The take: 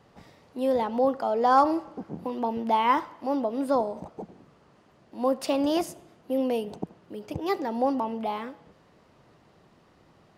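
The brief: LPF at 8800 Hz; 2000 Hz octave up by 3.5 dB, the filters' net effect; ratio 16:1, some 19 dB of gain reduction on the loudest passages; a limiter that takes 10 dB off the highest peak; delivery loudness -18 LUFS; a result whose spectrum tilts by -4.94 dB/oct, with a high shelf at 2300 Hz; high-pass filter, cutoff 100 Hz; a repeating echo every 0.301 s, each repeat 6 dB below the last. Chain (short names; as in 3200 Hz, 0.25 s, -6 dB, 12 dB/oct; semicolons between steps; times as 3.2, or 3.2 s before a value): HPF 100 Hz; LPF 8800 Hz; bell 2000 Hz +7 dB; high shelf 2300 Hz -5.5 dB; compressor 16:1, threshold -33 dBFS; limiter -32 dBFS; feedback echo 0.301 s, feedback 50%, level -6 dB; gain +23 dB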